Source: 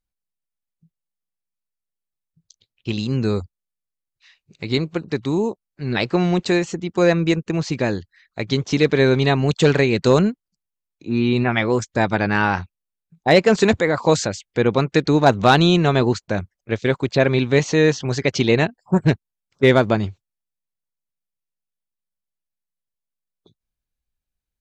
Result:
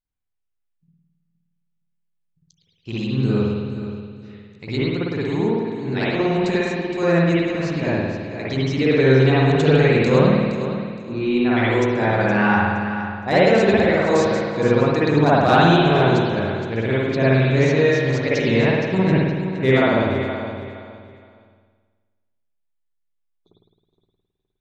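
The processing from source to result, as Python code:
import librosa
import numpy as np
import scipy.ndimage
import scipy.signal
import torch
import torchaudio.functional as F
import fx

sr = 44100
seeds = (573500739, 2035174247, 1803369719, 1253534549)

p1 = x + fx.echo_feedback(x, sr, ms=467, feedback_pct=26, wet_db=-10.5, dry=0)
p2 = fx.rev_spring(p1, sr, rt60_s=1.4, pass_ms=(53,), chirp_ms=55, drr_db=-8.5)
y = p2 * librosa.db_to_amplitude(-8.5)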